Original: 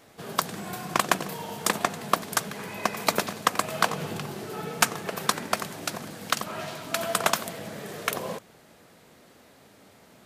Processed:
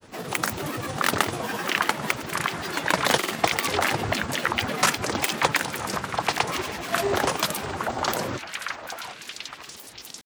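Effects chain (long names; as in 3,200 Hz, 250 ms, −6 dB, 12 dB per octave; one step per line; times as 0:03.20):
echo through a band-pass that steps 685 ms, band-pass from 1,400 Hz, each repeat 0.7 octaves, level 0 dB
transient designer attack −8 dB, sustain −3 dB
granular cloud, pitch spread up and down by 12 semitones
level +7.5 dB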